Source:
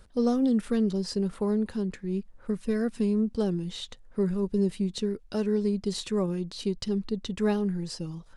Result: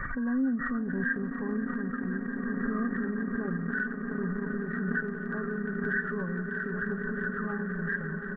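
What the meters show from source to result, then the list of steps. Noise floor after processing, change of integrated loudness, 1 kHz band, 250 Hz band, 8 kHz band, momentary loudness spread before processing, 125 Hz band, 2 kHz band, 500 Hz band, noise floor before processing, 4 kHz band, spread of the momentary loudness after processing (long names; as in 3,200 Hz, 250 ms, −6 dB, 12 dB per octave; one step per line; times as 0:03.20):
−37 dBFS, −3.0 dB, +1.5 dB, −3.5 dB, below −35 dB, 8 LU, −3.5 dB, +16.0 dB, −7.5 dB, −53 dBFS, below −30 dB, 3 LU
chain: hearing-aid frequency compression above 1,100 Hz 4 to 1
brickwall limiter −20 dBFS, peak gain reduction 5.5 dB
flat-topped bell 530 Hz −11 dB
comb filter 7.4 ms, depth 51%
echo that builds up and dies away 175 ms, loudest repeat 8, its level −13 dB
transient designer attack −1 dB, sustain −8 dB
low-shelf EQ 130 Hz −10 dB
background raised ahead of every attack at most 24 dB per second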